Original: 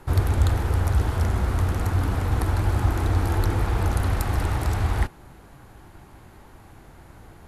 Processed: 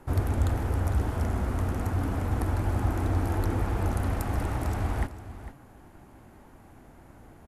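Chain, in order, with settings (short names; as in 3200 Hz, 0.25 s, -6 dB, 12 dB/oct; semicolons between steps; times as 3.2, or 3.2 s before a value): fifteen-band EQ 250 Hz +7 dB, 630 Hz +4 dB, 4000 Hz -5 dB; echo 0.452 s -14 dB; gain -6 dB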